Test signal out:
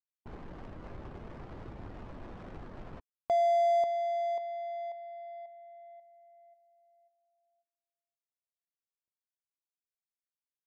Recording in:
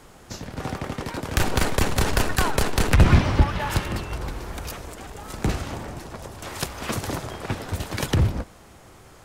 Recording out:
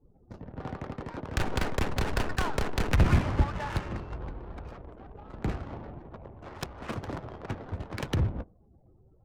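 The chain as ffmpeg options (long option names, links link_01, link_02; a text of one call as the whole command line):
ffmpeg -i in.wav -af "afftdn=noise_reduction=30:noise_floor=-43,adynamicsmooth=sensitivity=4:basefreq=620,volume=-7dB" out.wav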